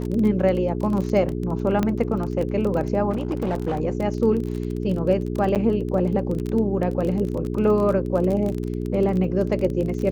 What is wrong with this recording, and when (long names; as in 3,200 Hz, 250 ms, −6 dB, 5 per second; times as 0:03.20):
surface crackle 26 per second −26 dBFS
mains hum 60 Hz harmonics 7 −27 dBFS
0:01.83: click −10 dBFS
0:03.10–0:03.80: clipping −19.5 dBFS
0:05.55–0:05.56: drop-out 7.9 ms